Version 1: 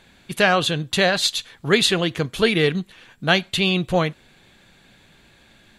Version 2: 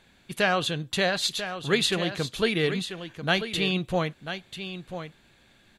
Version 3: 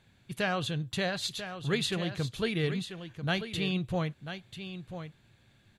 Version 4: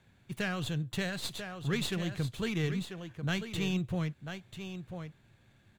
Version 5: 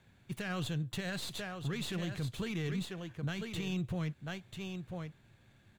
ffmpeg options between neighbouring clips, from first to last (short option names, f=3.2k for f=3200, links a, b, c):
-af "aecho=1:1:991:0.316,volume=-6.5dB"
-af "equalizer=f=110:t=o:w=0.99:g=14.5,volume=-7.5dB"
-filter_complex "[0:a]acrossover=split=370|1400|2400[a][b][c][d];[b]acompressor=threshold=-45dB:ratio=6[e];[d]aeval=exprs='max(val(0),0)':c=same[f];[a][e][c][f]amix=inputs=4:normalize=0"
-af "alimiter=level_in=4.5dB:limit=-24dB:level=0:latency=1:release=31,volume=-4.5dB"